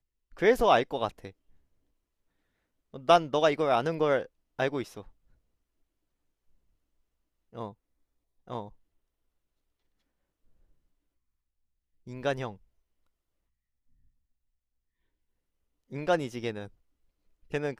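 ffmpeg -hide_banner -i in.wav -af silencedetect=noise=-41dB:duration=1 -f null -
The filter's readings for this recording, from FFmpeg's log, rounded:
silence_start: 1.29
silence_end: 2.94 | silence_duration: 1.65
silence_start: 5.01
silence_end: 7.55 | silence_duration: 2.54
silence_start: 8.68
silence_end: 12.07 | silence_duration: 3.39
silence_start: 12.54
silence_end: 15.92 | silence_duration: 3.38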